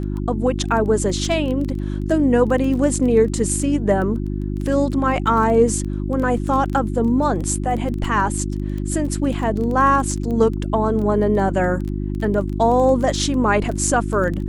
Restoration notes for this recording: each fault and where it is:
crackle 13/s -25 dBFS
hum 50 Hz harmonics 7 -24 dBFS

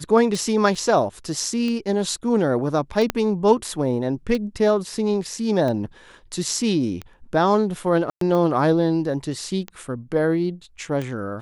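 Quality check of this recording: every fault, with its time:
tick 45 rpm
0.75 gap 3.6 ms
3.1 pop -7 dBFS
8.1–8.21 gap 0.113 s

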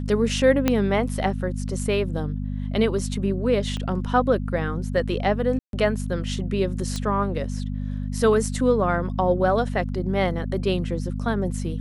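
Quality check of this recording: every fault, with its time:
hum 50 Hz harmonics 5 -28 dBFS
0.68 pop -6 dBFS
3.77 pop -19 dBFS
5.59–5.73 gap 0.142 s
6.96 pop -16 dBFS

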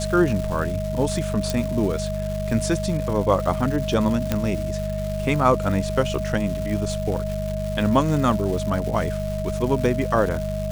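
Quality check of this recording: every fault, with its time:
crackle 430/s -29 dBFS
hum 50 Hz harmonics 4 -28 dBFS
tone 630 Hz -28 dBFS
1.5 pop
4.32 pop -7 dBFS

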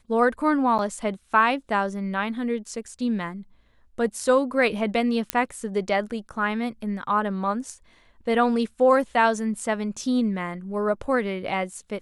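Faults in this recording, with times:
0.78–0.79 gap 8.6 ms
5.3 pop -6 dBFS

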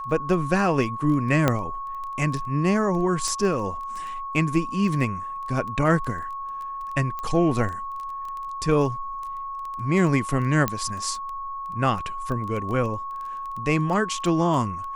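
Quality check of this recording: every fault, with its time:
crackle 10/s -30 dBFS
tone 1100 Hz -30 dBFS
1.48 pop -6 dBFS
3.28 pop -16 dBFS
7.19 pop -19 dBFS
10.68 pop -8 dBFS

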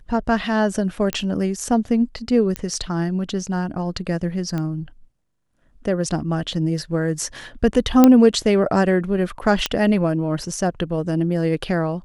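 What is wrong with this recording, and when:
1.13 pop -8 dBFS
2.56 pop -10 dBFS
4.58 pop -15 dBFS
8.04 pop 0 dBFS
9.66 pop -4 dBFS

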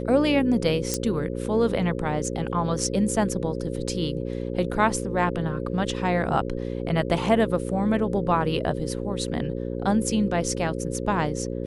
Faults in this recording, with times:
buzz 60 Hz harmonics 9 -30 dBFS
0.94 pop -10 dBFS

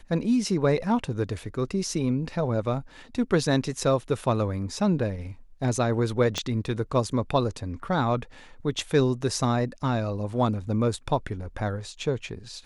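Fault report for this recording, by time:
6.38 pop -13 dBFS

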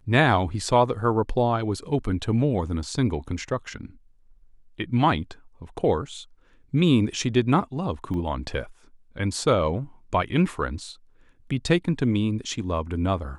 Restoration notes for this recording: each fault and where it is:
8.14 gap 2 ms

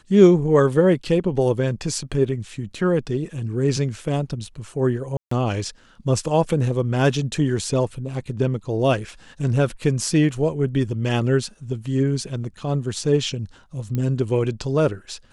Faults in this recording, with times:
5.17–5.31 gap 0.144 s
13.95 pop -14 dBFS

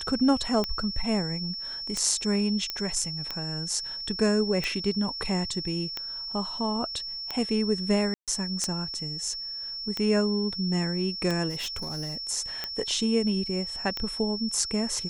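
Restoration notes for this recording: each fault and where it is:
tick 45 rpm -15 dBFS
tone 5400 Hz -33 dBFS
2.7 pop -14 dBFS
8.14–8.28 gap 0.137 s
11.49–12.17 clipped -29 dBFS

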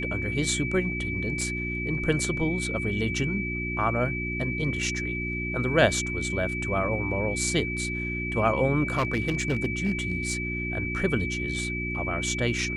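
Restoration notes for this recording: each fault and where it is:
hum 60 Hz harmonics 6 -33 dBFS
tone 2300 Hz -31 dBFS
1.41 gap 3 ms
8.88–10.33 clipped -20 dBFS

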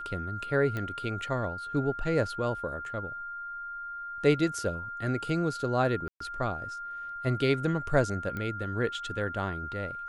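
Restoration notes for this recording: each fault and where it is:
tone 1400 Hz -36 dBFS
0.77 pop -21 dBFS
6.08–6.2 gap 0.124 s
8.37 pop -23 dBFS

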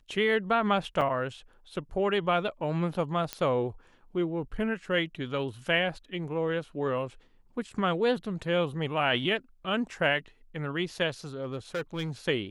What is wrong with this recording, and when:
1.01–1.02 gap 5.5 ms
3.33 pop -15 dBFS
11.42–12.1 clipped -27.5 dBFS

